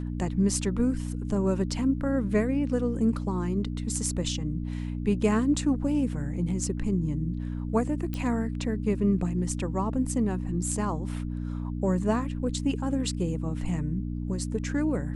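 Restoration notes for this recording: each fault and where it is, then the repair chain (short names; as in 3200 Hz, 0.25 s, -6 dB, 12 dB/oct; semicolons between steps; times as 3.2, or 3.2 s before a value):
hum 60 Hz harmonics 5 -32 dBFS
8.14 pop -19 dBFS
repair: de-click; de-hum 60 Hz, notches 5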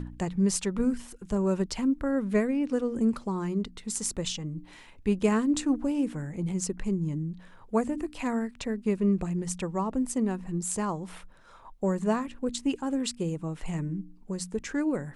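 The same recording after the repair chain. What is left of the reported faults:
none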